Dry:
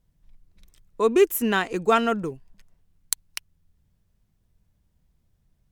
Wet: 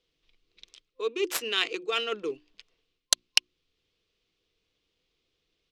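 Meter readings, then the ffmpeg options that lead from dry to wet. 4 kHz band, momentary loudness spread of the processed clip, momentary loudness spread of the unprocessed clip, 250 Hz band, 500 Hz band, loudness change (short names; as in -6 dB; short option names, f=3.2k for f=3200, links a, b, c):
+8.0 dB, 11 LU, 15 LU, -15.0 dB, -9.5 dB, -5.0 dB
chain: -filter_complex "[0:a]aresample=32000,aresample=44100,areverse,acompressor=threshold=-31dB:ratio=6,areverse,superequalizer=6b=2.24:7b=2:8b=0.501:9b=0.398,aexciter=amount=5.2:drive=9.2:freq=2.5k,adynamicsmooth=sensitivity=1.5:basefreq=2.5k,acrossover=split=400 5300:gain=0.0794 1 0.158[a][b][c];[a][b][c]amix=inputs=3:normalize=0,bandreject=f=60:t=h:w=6,bandreject=f=120:t=h:w=6,bandreject=f=180:t=h:w=6,bandreject=f=240:t=h:w=6,bandreject=f=300:t=h:w=6,bandreject=f=360:t=h:w=6,volume=3dB"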